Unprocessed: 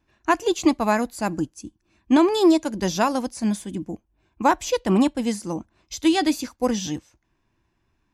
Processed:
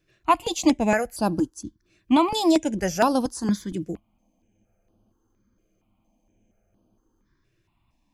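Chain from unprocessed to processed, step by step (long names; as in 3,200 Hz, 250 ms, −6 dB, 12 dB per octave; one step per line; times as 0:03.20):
frozen spectrum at 0:04.02, 3.24 s
step-sequenced phaser 4.3 Hz 240–7,100 Hz
level +3 dB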